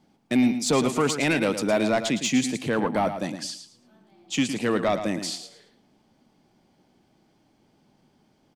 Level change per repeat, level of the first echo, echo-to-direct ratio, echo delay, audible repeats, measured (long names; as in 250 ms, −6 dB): −13.0 dB, −9.5 dB, −9.5 dB, 111 ms, 2